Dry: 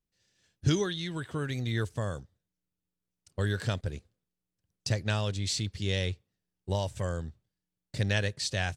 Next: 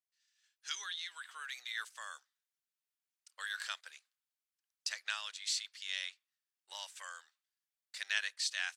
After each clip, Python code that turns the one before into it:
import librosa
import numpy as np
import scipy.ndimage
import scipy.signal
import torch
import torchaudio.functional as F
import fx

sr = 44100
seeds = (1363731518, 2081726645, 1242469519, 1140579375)

y = fx.rider(x, sr, range_db=10, speed_s=2.0)
y = scipy.signal.sosfilt(scipy.signal.butter(4, 1200.0, 'highpass', fs=sr, output='sos'), y)
y = y * 10.0 ** (-2.5 / 20.0)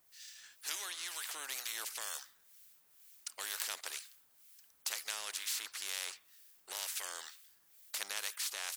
y = fx.high_shelf(x, sr, hz=9400.0, db=12.0)
y = fx.harmonic_tremolo(y, sr, hz=2.1, depth_pct=70, crossover_hz=1600.0)
y = fx.spectral_comp(y, sr, ratio=4.0)
y = y * 10.0 ** (5.5 / 20.0)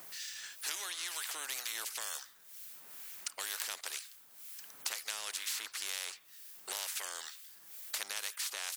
y = fx.band_squash(x, sr, depth_pct=70)
y = y * 10.0 ** (1.0 / 20.0)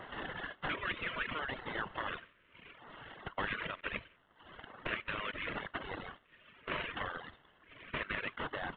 y = fx.cvsd(x, sr, bps=16000)
y = fx.dereverb_blind(y, sr, rt60_s=1.6)
y = fx.filter_lfo_notch(y, sr, shape='square', hz=0.72, low_hz=800.0, high_hz=2400.0, q=2.2)
y = y * 10.0 ** (11.0 / 20.0)